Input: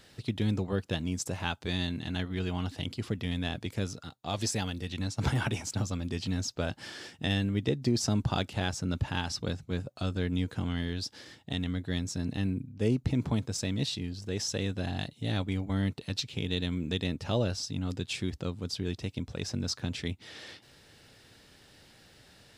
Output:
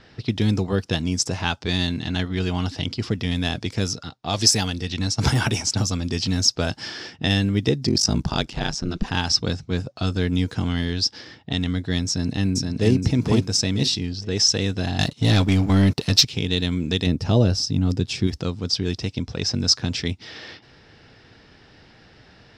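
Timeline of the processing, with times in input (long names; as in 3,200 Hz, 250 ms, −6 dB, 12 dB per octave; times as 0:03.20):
0:03.36–0:07.16: high-shelf EQ 8,300 Hz +6.5 dB
0:07.85–0:09.10: ring modulation 20 Hz → 110 Hz
0:12.08–0:12.93: delay throw 470 ms, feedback 25%, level −3 dB
0:14.99–0:16.25: leveller curve on the samples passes 2
0:17.06–0:18.27: tilt shelving filter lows +5 dB, about 640 Hz
whole clip: notch filter 560 Hz, Q 12; low-pass that shuts in the quiet parts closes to 2,300 Hz, open at −26 dBFS; parametric band 5,300 Hz +10.5 dB 0.42 octaves; level +8.5 dB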